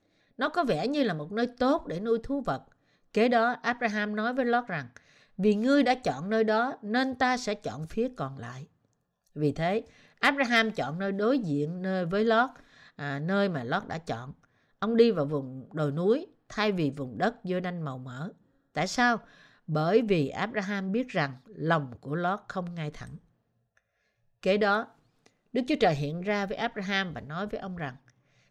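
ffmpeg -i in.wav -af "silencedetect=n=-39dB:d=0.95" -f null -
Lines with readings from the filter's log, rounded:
silence_start: 23.16
silence_end: 24.43 | silence_duration: 1.27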